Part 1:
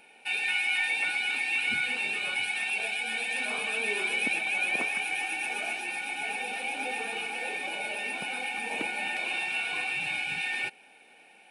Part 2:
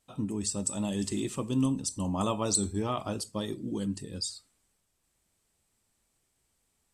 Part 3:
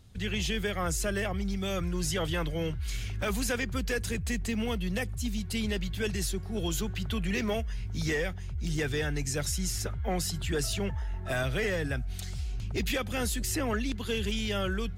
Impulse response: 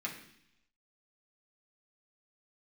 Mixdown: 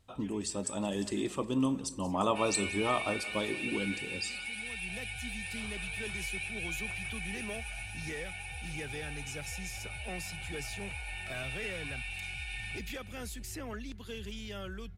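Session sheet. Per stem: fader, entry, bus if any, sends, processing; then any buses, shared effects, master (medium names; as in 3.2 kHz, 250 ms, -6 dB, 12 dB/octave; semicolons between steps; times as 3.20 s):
-13.5 dB, 2.10 s, no send, echo send -11 dB, high-pass 560 Hz; tilt EQ +2.5 dB/octave; band-stop 1.1 kHz, Q 20
+2.5 dB, 0.00 s, no send, echo send -19 dB, tone controls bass -10 dB, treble -9 dB
-11.0 dB, 0.00 s, no send, no echo send, auto duck -15 dB, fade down 0.40 s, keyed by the second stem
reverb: none
echo: feedback delay 180 ms, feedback 52%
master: none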